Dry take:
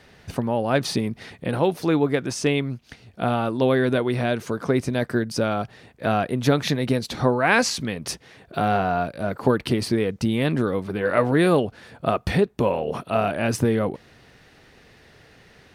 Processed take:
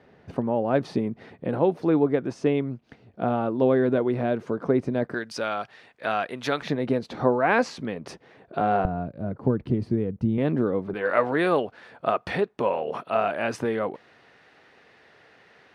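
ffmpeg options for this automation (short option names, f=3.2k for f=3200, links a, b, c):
-af "asetnsamples=n=441:p=0,asendcmd='5.14 bandpass f 1800;6.62 bandpass f 530;8.85 bandpass f 130;10.38 bandpass f 360;10.94 bandpass f 1100',bandpass=f=390:t=q:w=0.53:csg=0"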